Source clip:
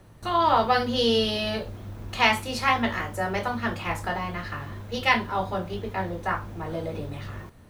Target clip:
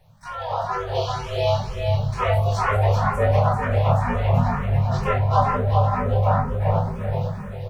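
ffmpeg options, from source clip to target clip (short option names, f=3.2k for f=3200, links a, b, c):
-filter_complex "[0:a]afftfilt=real='re*(1-between(b*sr/4096,190,480))':imag='im*(1-between(b*sr/4096,190,480))':win_size=4096:overlap=0.75,bandreject=f=45.44:t=h:w=4,bandreject=f=90.88:t=h:w=4,bandreject=f=136.32:t=h:w=4,bandreject=f=181.76:t=h:w=4,bandreject=f=227.2:t=h:w=4,bandreject=f=272.64:t=h:w=4,bandreject=f=318.08:t=h:w=4,bandreject=f=363.52:t=h:w=4,bandreject=f=408.96:t=h:w=4,bandreject=f=454.4:t=h:w=4,bandreject=f=499.84:t=h:w=4,bandreject=f=545.28:t=h:w=4,bandreject=f=590.72:t=h:w=4,bandreject=f=636.16:t=h:w=4,bandreject=f=681.6:t=h:w=4,bandreject=f=727.04:t=h:w=4,bandreject=f=772.48:t=h:w=4,bandreject=f=817.92:t=h:w=4,bandreject=f=863.36:t=h:w=4,bandreject=f=908.8:t=h:w=4,bandreject=f=954.24:t=h:w=4,bandreject=f=999.68:t=h:w=4,bandreject=f=1.04512k:t=h:w=4,bandreject=f=1.09056k:t=h:w=4,bandreject=f=1.136k:t=h:w=4,bandreject=f=1.18144k:t=h:w=4,bandreject=f=1.22688k:t=h:w=4,bandreject=f=1.27232k:t=h:w=4,bandreject=f=1.31776k:t=h:w=4,bandreject=f=1.3632k:t=h:w=4,bandreject=f=1.40864k:t=h:w=4,bandreject=f=1.45408k:t=h:w=4,adynamicequalizer=threshold=0.002:dfrequency=150:dqfactor=7.9:tfrequency=150:tqfactor=7.9:attack=5:release=100:ratio=0.375:range=2.5:mode=boostabove:tftype=bell,acrossover=split=860[a][b];[a]dynaudnorm=f=270:g=9:m=16dB[c];[b]alimiter=limit=-24dB:level=0:latency=1:release=301[d];[c][d]amix=inputs=2:normalize=0,asplit=4[e][f][g][h];[f]asetrate=33038,aresample=44100,atempo=1.33484,volume=-13dB[i];[g]asetrate=35002,aresample=44100,atempo=1.25992,volume=-8dB[j];[h]asetrate=58866,aresample=44100,atempo=0.749154,volume=-5dB[k];[e][i][j][k]amix=inputs=4:normalize=0,flanger=delay=19.5:depth=2.3:speed=0.32,asplit=2[l][m];[m]adelay=42,volume=-13dB[n];[l][n]amix=inputs=2:normalize=0,aecho=1:1:389|778|1167|1556|1945:0.668|0.274|0.112|0.0461|0.0189,asplit=2[o][p];[p]afreqshift=2.1[q];[o][q]amix=inputs=2:normalize=1"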